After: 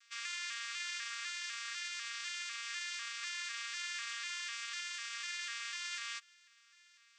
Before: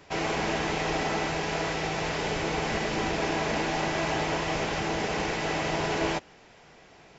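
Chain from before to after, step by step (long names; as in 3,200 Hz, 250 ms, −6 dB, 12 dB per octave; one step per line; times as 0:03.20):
vocoder with an arpeggio as carrier bare fifth, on A#3, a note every 249 ms
Chebyshev high-pass filter 1,200 Hz, order 6
first difference
level +10 dB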